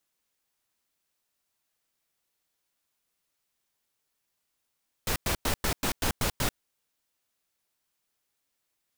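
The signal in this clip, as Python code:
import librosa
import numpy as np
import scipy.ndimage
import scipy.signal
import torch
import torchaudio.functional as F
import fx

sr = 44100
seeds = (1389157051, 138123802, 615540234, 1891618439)

y = fx.noise_burst(sr, seeds[0], colour='pink', on_s=0.09, off_s=0.1, bursts=8, level_db=-27.0)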